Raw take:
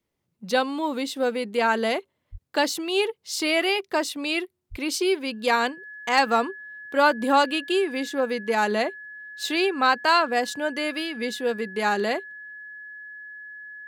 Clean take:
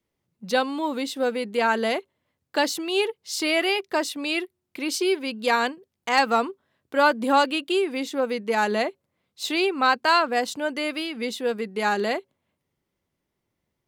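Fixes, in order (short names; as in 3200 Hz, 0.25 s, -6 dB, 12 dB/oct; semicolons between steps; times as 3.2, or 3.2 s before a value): notch 1700 Hz, Q 30; de-plosive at 2.31/4.7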